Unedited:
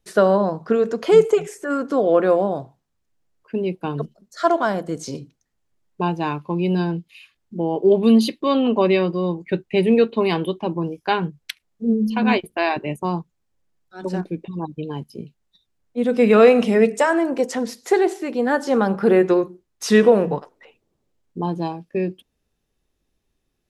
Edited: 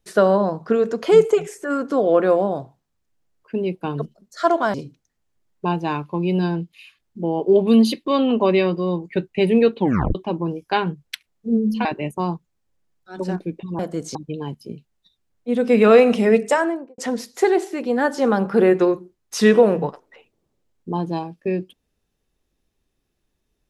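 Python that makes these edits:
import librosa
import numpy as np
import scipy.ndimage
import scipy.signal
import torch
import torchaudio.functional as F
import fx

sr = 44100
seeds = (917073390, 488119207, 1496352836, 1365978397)

y = fx.studio_fade_out(x, sr, start_s=17.01, length_s=0.46)
y = fx.edit(y, sr, fx.move(start_s=4.74, length_s=0.36, to_s=14.64),
    fx.tape_stop(start_s=10.14, length_s=0.37),
    fx.cut(start_s=12.21, length_s=0.49), tone=tone)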